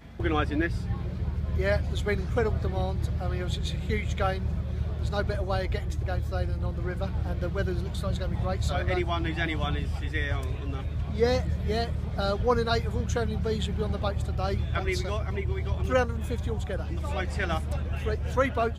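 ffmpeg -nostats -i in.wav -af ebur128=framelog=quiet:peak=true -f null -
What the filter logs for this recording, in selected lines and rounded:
Integrated loudness:
  I:         -29.2 LUFS
  Threshold: -39.2 LUFS
Loudness range:
  LRA:         2.0 LU
  Threshold: -49.2 LUFS
  LRA low:   -30.2 LUFS
  LRA high:  -28.2 LUFS
True peak:
  Peak:      -11.0 dBFS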